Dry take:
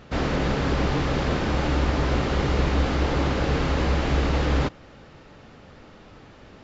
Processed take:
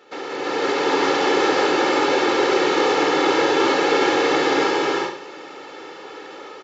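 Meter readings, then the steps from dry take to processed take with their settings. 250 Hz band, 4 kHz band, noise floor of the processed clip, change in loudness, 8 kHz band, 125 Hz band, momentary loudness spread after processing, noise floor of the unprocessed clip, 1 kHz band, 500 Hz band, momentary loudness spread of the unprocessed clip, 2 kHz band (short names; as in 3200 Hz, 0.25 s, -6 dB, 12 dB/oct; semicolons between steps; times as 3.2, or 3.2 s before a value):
+3.5 dB, +9.0 dB, -38 dBFS, +5.5 dB, n/a, -19.0 dB, 19 LU, -48 dBFS, +9.5 dB, +9.5 dB, 1 LU, +9.0 dB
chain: octaver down 2 oct, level +4 dB; HPF 290 Hz 24 dB/oct; comb 2.3 ms, depth 64%; limiter -21 dBFS, peak gain reduction 8 dB; AGC gain up to 9 dB; on a send: flutter echo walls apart 11.8 m, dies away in 0.51 s; on the sum: non-linear reverb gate 0.43 s rising, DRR -2.5 dB; gain -2.5 dB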